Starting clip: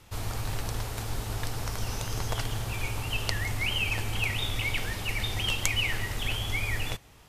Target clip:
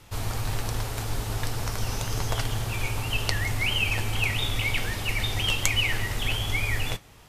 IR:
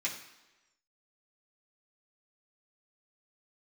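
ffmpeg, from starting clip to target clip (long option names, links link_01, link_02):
-af "flanger=delay=6.8:depth=1.8:regen=-71:speed=0.91:shape=triangular,volume=7.5dB"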